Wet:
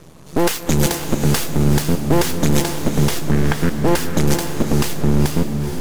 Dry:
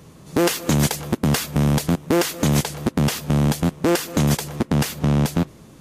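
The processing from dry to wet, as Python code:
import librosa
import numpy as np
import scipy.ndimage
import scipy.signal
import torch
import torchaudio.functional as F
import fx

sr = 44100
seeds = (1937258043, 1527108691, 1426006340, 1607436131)

y = fx.lowpass_res(x, sr, hz=1600.0, q=3.7, at=(3.31, 3.77))
y = np.maximum(y, 0.0)
y = fx.echo_diffused(y, sr, ms=469, feedback_pct=43, wet_db=-6)
y = F.gain(torch.from_numpy(y), 5.5).numpy()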